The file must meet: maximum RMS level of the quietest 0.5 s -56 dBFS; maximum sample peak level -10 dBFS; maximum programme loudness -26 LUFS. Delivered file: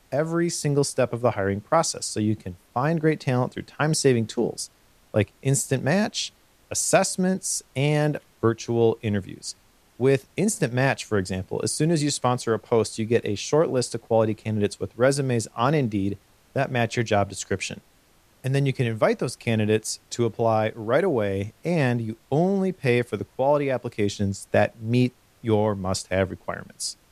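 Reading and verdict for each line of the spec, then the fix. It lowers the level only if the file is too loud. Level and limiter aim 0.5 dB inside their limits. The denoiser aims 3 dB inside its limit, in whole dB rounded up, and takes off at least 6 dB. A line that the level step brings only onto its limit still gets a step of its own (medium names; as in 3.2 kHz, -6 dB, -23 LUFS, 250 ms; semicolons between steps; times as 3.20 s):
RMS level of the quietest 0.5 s -59 dBFS: pass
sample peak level -5.5 dBFS: fail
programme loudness -24.5 LUFS: fail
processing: trim -2 dB; peak limiter -10.5 dBFS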